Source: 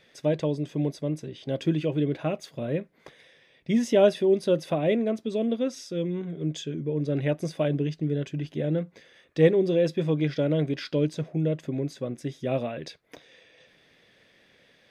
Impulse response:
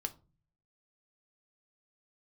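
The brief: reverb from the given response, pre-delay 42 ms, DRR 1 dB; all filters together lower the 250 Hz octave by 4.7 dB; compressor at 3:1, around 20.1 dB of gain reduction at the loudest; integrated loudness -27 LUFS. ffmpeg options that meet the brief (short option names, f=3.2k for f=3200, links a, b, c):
-filter_complex "[0:a]equalizer=f=250:t=o:g=-7,acompressor=threshold=-44dB:ratio=3,asplit=2[a][b];[1:a]atrim=start_sample=2205,adelay=42[c];[b][c]afir=irnorm=-1:irlink=0,volume=-0.5dB[d];[a][d]amix=inputs=2:normalize=0,volume=14.5dB"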